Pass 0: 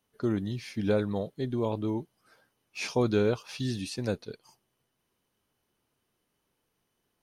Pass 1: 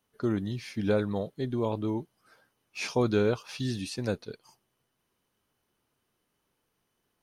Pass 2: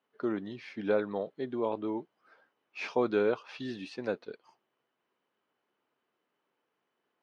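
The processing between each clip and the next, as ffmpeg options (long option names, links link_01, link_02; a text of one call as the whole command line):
ffmpeg -i in.wav -af "equalizer=frequency=1300:width=1.5:gain=2" out.wav
ffmpeg -i in.wav -af "highpass=310,lowpass=2600" out.wav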